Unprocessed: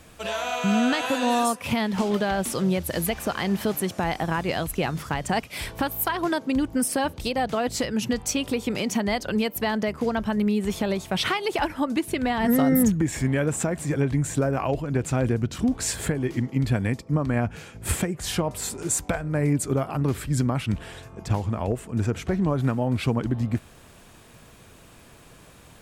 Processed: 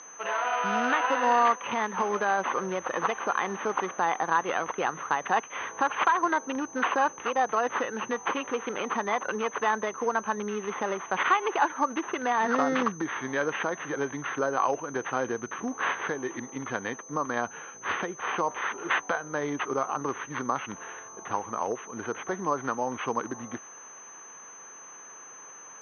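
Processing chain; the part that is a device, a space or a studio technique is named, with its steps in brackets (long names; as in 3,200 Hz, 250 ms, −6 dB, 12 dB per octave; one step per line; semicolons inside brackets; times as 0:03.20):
toy sound module (linearly interpolated sample-rate reduction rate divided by 8×; switching amplifier with a slow clock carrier 6,200 Hz; loudspeaker in its box 630–3,800 Hz, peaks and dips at 640 Hz −8 dB, 1,100 Hz +4 dB, 2,300 Hz −6 dB)
level +5.5 dB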